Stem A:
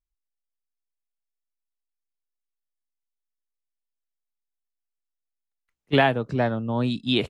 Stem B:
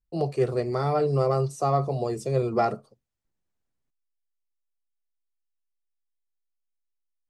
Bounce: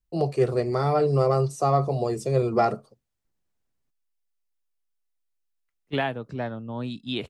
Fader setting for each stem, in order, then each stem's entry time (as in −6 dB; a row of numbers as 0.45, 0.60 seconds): −7.5, +2.0 decibels; 0.00, 0.00 seconds